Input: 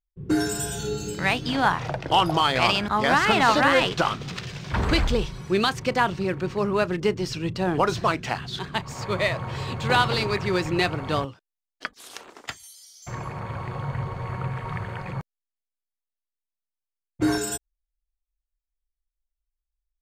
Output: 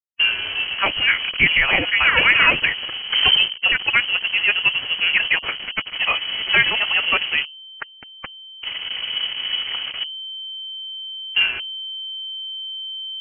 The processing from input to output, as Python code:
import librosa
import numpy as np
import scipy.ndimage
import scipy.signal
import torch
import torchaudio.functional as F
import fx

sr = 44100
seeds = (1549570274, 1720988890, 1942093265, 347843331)

y = fx.delta_hold(x, sr, step_db=-28.5)
y = fx.hum_notches(y, sr, base_hz=50, count=8)
y = fx.stretch_vocoder(y, sr, factor=0.66)
y = fx.air_absorb(y, sr, metres=190.0)
y = fx.freq_invert(y, sr, carrier_hz=3100)
y = y * 10.0 ** (6.5 / 20.0)